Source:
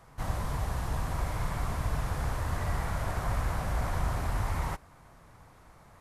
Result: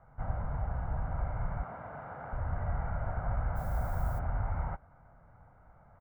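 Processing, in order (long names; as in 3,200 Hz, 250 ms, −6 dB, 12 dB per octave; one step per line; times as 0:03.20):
low-pass filter 1,600 Hz 24 dB per octave
comb filter 1.4 ms, depth 52%
0:01.63–0:02.33: high-pass filter 250 Hz 12 dB per octave
0:03.55–0:04.18: background noise violet −52 dBFS
level −5 dB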